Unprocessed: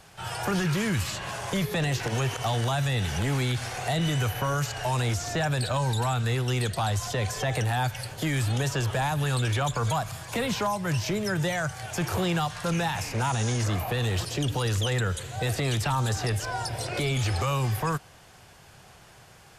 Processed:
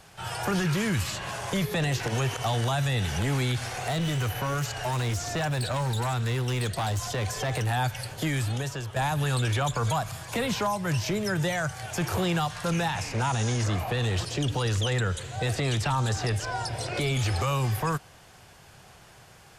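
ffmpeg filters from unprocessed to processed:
-filter_complex "[0:a]asettb=1/sr,asplit=3[s0][s1][s2];[s0]atrim=end=3.674[s3];[s1]atrim=start=3.67:end=7.67,asetpts=PTS-STARTPTS,afade=t=in:d=0.004:c=qsin,afade=t=out:st=3.996:d=0.004:c=qsin,asoftclip=type=hard:threshold=0.0596[s4];[s2]atrim=start=7.666[s5];[s3][s4]acrossfade=d=0.004:c1=hsin:c2=qsin[s6];[s6][s5]acrossfade=d=0.004:c1=qsin:c2=hsin,asettb=1/sr,asplit=3[s7][s8][s9];[s7]atrim=end=12.884[s10];[s8]atrim=start=12.88:end=17.01,asetpts=PTS-STARTPTS,afade=t=in:d=0.004:c=qsin,afade=t=out:st=4.126:d=0.004:c=qsin,lowpass=9200[s11];[s9]atrim=start=17.006[s12];[s10][s11]acrossfade=d=0.004:c1=hsin:c2=qsin[s13];[s13][s12]acrossfade=d=0.004:c1=qsin:c2=hsin,asplit=2[s14][s15];[s14]atrim=end=8.96,asetpts=PTS-STARTPTS,afade=t=out:st=8.24:d=0.72:silence=0.298538[s16];[s15]atrim=start=8.96,asetpts=PTS-STARTPTS,afade=t=in:d=0.004:c=hsin:silence=0.298538[s17];[s16][s17]concat=n=2:v=0:a=1"

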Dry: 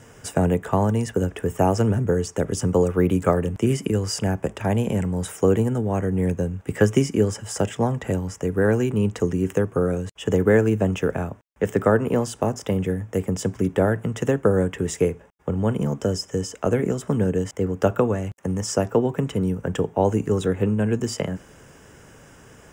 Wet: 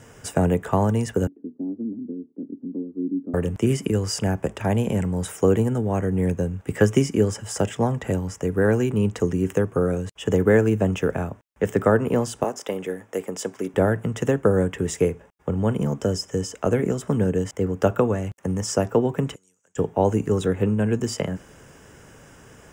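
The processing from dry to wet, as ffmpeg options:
-filter_complex "[0:a]asettb=1/sr,asplit=3[s0][s1][s2];[s0]atrim=end=1.274[s3];[s1]atrim=start=1.27:end=3.34,asetpts=PTS-STARTPTS,afade=t=in:d=0.004:c=qsin,afade=t=out:st=2.066:d=0.004:c=qsin,asuperpass=centerf=270:order=4:qfactor=3.2[s4];[s2]atrim=start=3.336[s5];[s3][s4]acrossfade=d=0.004:c1=hsin:c2=qsin[s6];[s6][s5]acrossfade=d=0.004:c1=qsin:c2=hsin,asettb=1/sr,asplit=3[s7][s8][s9];[s7]atrim=end=12.444[s10];[s8]atrim=start=12.44:end=13.74,asetpts=PTS-STARTPTS,afade=t=in:d=0.004:c=qsin,afade=t=out:st=1.296:d=0.004:c=qsin,highpass=350[s11];[s9]atrim=start=13.736[s12];[s10][s11]acrossfade=d=0.004:c1=hsin:c2=qsin[s13];[s13][s12]acrossfade=d=0.004:c1=qsin:c2=hsin,asplit=3[s14][s15][s16];[s14]afade=t=out:st=19.34:d=0.02[s17];[s15]bandpass=f=6900:t=q:w=5.5,afade=t=in:st=19.34:d=0.02,afade=t=out:st=19.76:d=0.02[s18];[s16]afade=t=in:st=19.76:d=0.02[s19];[s17][s18][s19]amix=inputs=3:normalize=0"

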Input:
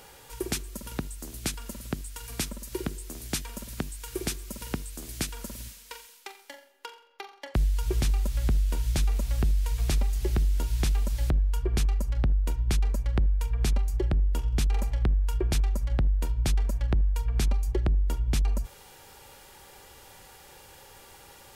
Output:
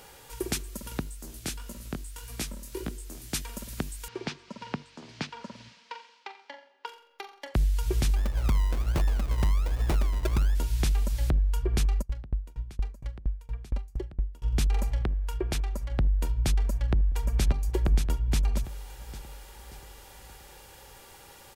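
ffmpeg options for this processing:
-filter_complex "[0:a]asplit=3[s0][s1][s2];[s0]afade=t=out:st=1.02:d=0.02[s3];[s1]flanger=delay=16.5:depth=7.8:speed=1.7,afade=t=in:st=1.02:d=0.02,afade=t=out:st=3.33:d=0.02[s4];[s2]afade=t=in:st=3.33:d=0.02[s5];[s3][s4][s5]amix=inputs=3:normalize=0,asettb=1/sr,asplit=3[s6][s7][s8];[s6]atrim=end=4.084[s9];[s7]atrim=start=4.08:end=6.86,asetpts=PTS-STARTPTS,afade=t=in:d=0.004:c=qsin,afade=t=out:st=2.776:d=0.004:c=qsin,highpass=f=120:w=0.5412,highpass=f=120:w=1.3066,equalizer=f=340:t=q:w=4:g=-6,equalizer=f=930:t=q:w=4:g=7,equalizer=f=3700:t=q:w=4:g=-3,lowpass=f=4600:w=0.5412,lowpass=f=4600:w=1.3066[s10];[s8]atrim=start=6.856[s11];[s9][s10]acrossfade=d=0.004:c1=hsin:c2=qsin[s12];[s12][s11]acrossfade=d=0.004:c1=qsin:c2=hsin,asplit=3[s13][s14][s15];[s13]afade=t=out:st=8.15:d=0.02[s16];[s14]acrusher=samples=35:mix=1:aa=0.000001:lfo=1:lforange=21:lforate=1.3,afade=t=in:st=8.15:d=0.02,afade=t=out:st=10.54:d=0.02[s17];[s15]afade=t=in:st=10.54:d=0.02[s18];[s16][s17][s18]amix=inputs=3:normalize=0,asplit=3[s19][s20][s21];[s19]afade=t=out:st=12.01:d=0.02[s22];[s20]aeval=exprs='val(0)*pow(10,-29*if(lt(mod(4.3*n/s,1),2*abs(4.3)/1000),1-mod(4.3*n/s,1)/(2*abs(4.3)/1000),(mod(4.3*n/s,1)-2*abs(4.3)/1000)/(1-2*abs(4.3)/1000))/20)':c=same,afade=t=in:st=12.01:d=0.02,afade=t=out:st=14.43:d=0.02[s23];[s21]afade=t=in:st=14.43:d=0.02[s24];[s22][s23][s24]amix=inputs=3:normalize=0,asettb=1/sr,asplit=3[s25][s26][s27];[s25]atrim=end=15.014[s28];[s26]atrim=start=15.01:end=15.98,asetpts=PTS-STARTPTS,afade=t=in:d=0.004:c=qsin,afade=t=out:st=0.966:d=0.004:c=qsin,bass=f=250:g=-5,treble=f=4000:g=-3[s29];[s27]atrim=start=15.976[s30];[s28][s29]acrossfade=d=0.004:c1=hsin:c2=qsin[s31];[s31][s30]acrossfade=d=0.004:c1=qsin:c2=hsin,asplit=2[s32][s33];[s33]afade=t=in:st=16.53:d=0.01,afade=t=out:st=17.47:d=0.01,aecho=0:1:580|1160|1740|2320|2900|3480:0.630957|0.315479|0.157739|0.0788697|0.0394348|0.0197174[s34];[s32][s34]amix=inputs=2:normalize=0"

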